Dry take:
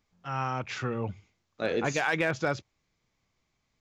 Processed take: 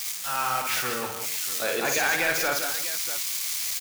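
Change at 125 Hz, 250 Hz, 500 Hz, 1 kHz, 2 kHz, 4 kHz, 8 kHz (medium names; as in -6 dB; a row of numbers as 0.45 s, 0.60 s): -10.0 dB, -3.5 dB, +0.5 dB, +5.0 dB, +6.0 dB, +13.0 dB, +19.5 dB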